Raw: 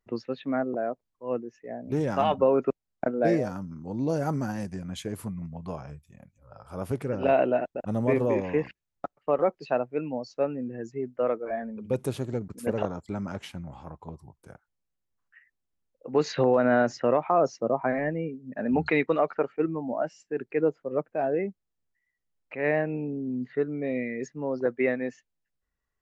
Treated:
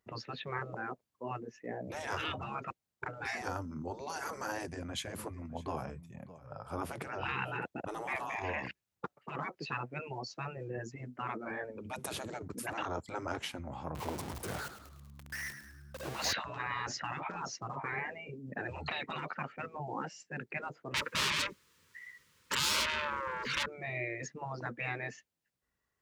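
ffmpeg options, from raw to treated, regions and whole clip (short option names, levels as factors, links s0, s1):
-filter_complex "[0:a]asettb=1/sr,asplit=3[s0][s1][s2];[s0]atrim=end=4.574[s3];[s1]atrim=start=4.57:end=7.65,asetpts=PTS-STARTPTS,afade=t=in:d=0.004:c=qsin,afade=t=out:st=3.076:d=0.004:c=qsin,highpass=59,highshelf=f=5200:g=-4.5,aecho=1:1:606:0.0944,atrim=end_sample=135828[s4];[s2]atrim=start=7.646[s5];[s3][s4]acrossfade=d=0.004:c1=hsin:c2=qsin[s6];[s6][s5]acrossfade=d=0.004:c1=qsin:c2=hsin,asettb=1/sr,asplit=3[s7][s8][s9];[s7]atrim=end=13.954[s10];[s8]atrim=start=13.95:end=16.33,asetpts=PTS-STARTPTS,afade=t=in:d=0.004:c=qsin,afade=t=out:st=2.376:d=0.004:c=qsin,aeval=exprs='val(0)+0.5*0.0133*sgn(val(0))':c=same,asplit=6[s11][s12][s13][s14][s15][s16];[s12]adelay=105,afreqshift=-71,volume=0.299[s17];[s13]adelay=210,afreqshift=-142,volume=0.143[s18];[s14]adelay=315,afreqshift=-213,volume=0.0684[s19];[s15]adelay=420,afreqshift=-284,volume=0.0331[s20];[s16]adelay=525,afreqshift=-355,volume=0.0158[s21];[s11][s17][s18][s19][s20][s21]amix=inputs=6:normalize=0,atrim=end_sample=104958[s22];[s9]atrim=start=16.326[s23];[s10][s22]acrossfade=d=0.004:c1=hsin:c2=qsin[s24];[s24][s23]acrossfade=d=0.004:c1=qsin:c2=hsin,asettb=1/sr,asplit=3[s25][s26][s27];[s25]atrim=end=20.944[s28];[s26]atrim=start=20.94:end=23.66,asetpts=PTS-STARTPTS,afade=t=in:d=0.004:c=qsin,afade=t=out:st=2.716:d=0.004:c=qsin,asubboost=boost=12:cutoff=120,asplit=2[s29][s30];[s30]highpass=f=720:p=1,volume=44.7,asoftclip=type=tanh:threshold=0.2[s31];[s29][s31]amix=inputs=2:normalize=0,lowpass=f=4700:p=1,volume=0.501,asuperstop=centerf=710:order=8:qfactor=2[s32];[s27]atrim=start=23.656[s33];[s28][s32]acrossfade=d=0.004:c1=hsin:c2=qsin[s34];[s34][s33]acrossfade=d=0.004:c1=qsin:c2=hsin,highpass=78,afftfilt=real='re*lt(hypot(re,im),0.0794)':imag='im*lt(hypot(re,im),0.0794)':win_size=1024:overlap=0.75,volume=1.41"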